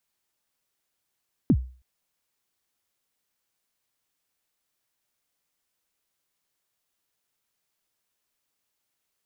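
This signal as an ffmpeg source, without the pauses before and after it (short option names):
-f lavfi -i "aevalsrc='0.251*pow(10,-3*t/0.39)*sin(2*PI*(320*0.062/log(63/320)*(exp(log(63/320)*min(t,0.062)/0.062)-1)+63*max(t-0.062,0)))':d=0.32:s=44100"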